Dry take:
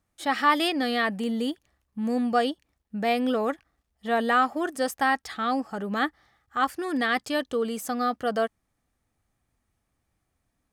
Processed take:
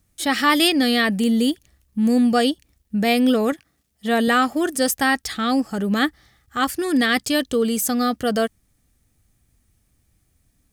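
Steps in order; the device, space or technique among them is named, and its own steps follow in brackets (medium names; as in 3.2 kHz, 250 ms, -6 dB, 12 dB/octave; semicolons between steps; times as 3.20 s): smiley-face EQ (bass shelf 190 Hz +6.5 dB; peaking EQ 930 Hz -8 dB 1.6 oct; treble shelf 5.2 kHz +8.5 dB); 3.52–4.28 s: high-pass 120 Hz 12 dB/octave; trim +8 dB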